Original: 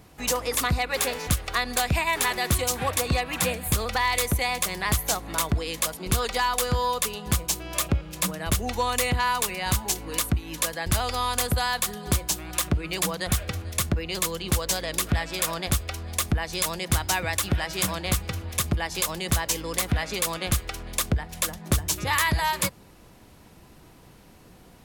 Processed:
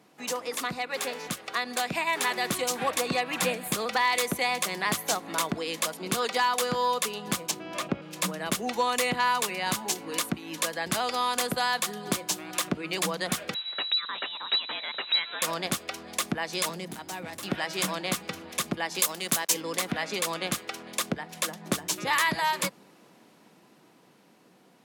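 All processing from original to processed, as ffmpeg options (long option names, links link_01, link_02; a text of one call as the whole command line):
ffmpeg -i in.wav -filter_complex "[0:a]asettb=1/sr,asplit=3[link_01][link_02][link_03];[link_01]atrim=end=7.514[link_04];[link_02]atrim=start=7.51:end=8.02,asetpts=PTS-STARTPTS,afade=type=in:duration=0.004:curve=qsin,afade=type=out:start_time=0.506:duration=0.004:curve=qsin,lowpass=frequency=2700:poles=1,aeval=exprs='val(0)+0.0112*(sin(2*PI*50*n/s)+sin(2*PI*2*50*n/s)/2+sin(2*PI*3*50*n/s)/3+sin(2*PI*4*50*n/s)/4+sin(2*PI*5*50*n/s)/5)':channel_layout=same[link_05];[link_03]atrim=start=8.016[link_06];[link_04][link_05]acrossfade=duration=0.004:curve1=hsin:curve2=qsin[link_07];[link_07][link_06]acrossfade=duration=0.004:curve1=qsin:curve2=hsin,asettb=1/sr,asplit=3[link_08][link_09][link_10];[link_08]atrim=end=13.544[link_11];[link_09]atrim=start=13.54:end=15.42,asetpts=PTS-STARTPTS,afade=type=in:duration=0.004:curve=qsin,afade=type=out:start_time=1.876:duration=0.004:curve=qsin,equalizer=frequency=430:width=0.98:gain=-10.5,lowpass=frequency=3400:width_type=q:width=0.5098,lowpass=frequency=3400:width_type=q:width=0.6013,lowpass=frequency=3400:width_type=q:width=0.9,lowpass=frequency=3400:width_type=q:width=2.563,afreqshift=-4000[link_12];[link_10]atrim=start=15.416[link_13];[link_11][link_12]acrossfade=duration=0.004:curve1=hsin:curve2=qsin[link_14];[link_14][link_13]acrossfade=duration=0.004:curve1=qsin:curve2=hsin,asettb=1/sr,asplit=3[link_15][link_16][link_17];[link_15]atrim=end=16.694[link_18];[link_16]atrim=start=16.69:end=17.43,asetpts=PTS-STARTPTS,afade=type=in:duration=0.004:curve=qsin,afade=type=out:start_time=0.736:duration=0.004:curve=qsin,acrossover=split=200|830|7800[link_19][link_20][link_21][link_22];[link_19]acompressor=threshold=-40dB:ratio=3[link_23];[link_20]acompressor=threshold=-42dB:ratio=3[link_24];[link_21]acompressor=threshold=-40dB:ratio=3[link_25];[link_22]acompressor=threshold=-34dB:ratio=3[link_26];[link_23][link_24][link_25][link_26]amix=inputs=4:normalize=0,lowshelf=frequency=240:gain=10,volume=29.5dB,asoftclip=hard,volume=-29.5dB[link_27];[link_17]atrim=start=17.426[link_28];[link_18][link_27]acrossfade=duration=0.004:curve1=hsin:curve2=qsin[link_29];[link_29][link_28]acrossfade=duration=0.004:curve1=qsin:curve2=hsin,asettb=1/sr,asplit=3[link_30][link_31][link_32];[link_30]atrim=end=18.994[link_33];[link_31]atrim=start=18.99:end=19.54,asetpts=PTS-STARTPTS,afade=type=in:duration=0.004:curve=qsin,afade=type=out:start_time=0.546:duration=0.004:curve=qsin,highpass=110,highshelf=frequency=7100:gain=11.5,aeval=exprs='sgn(val(0))*max(abs(val(0))-0.0119,0)':channel_layout=same[link_34];[link_32]atrim=start=19.536[link_35];[link_33][link_34]acrossfade=duration=0.004:curve1=hsin:curve2=qsin[link_36];[link_36][link_35]acrossfade=duration=0.004:curve1=qsin:curve2=hsin,highpass=frequency=180:width=0.5412,highpass=frequency=180:width=1.3066,highshelf=frequency=9800:gain=-9,dynaudnorm=framelen=320:gausssize=13:maxgain=5dB,volume=-5dB" out.wav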